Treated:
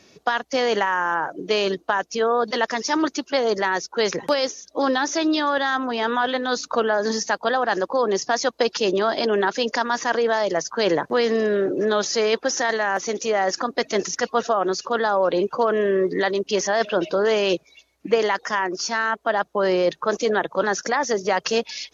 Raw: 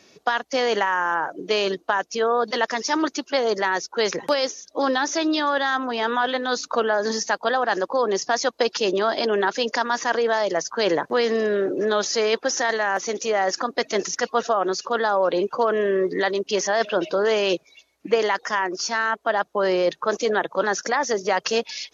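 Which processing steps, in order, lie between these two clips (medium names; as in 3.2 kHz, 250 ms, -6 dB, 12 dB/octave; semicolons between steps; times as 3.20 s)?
bass shelf 140 Hz +9.5 dB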